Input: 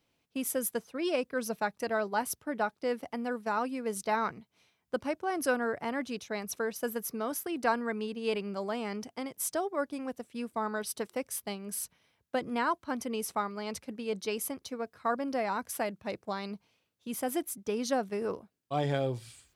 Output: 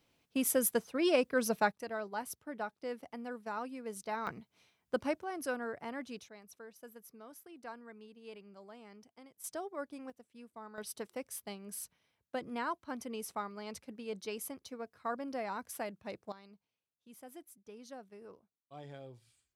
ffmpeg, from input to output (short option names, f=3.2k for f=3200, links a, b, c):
-af "asetnsamples=n=441:p=0,asendcmd='1.72 volume volume -8.5dB;4.27 volume volume -1dB;5.23 volume volume -8dB;6.29 volume volume -18.5dB;9.44 volume volume -9dB;10.1 volume volume -16dB;10.78 volume volume -7dB;16.32 volume volume -19dB',volume=2dB"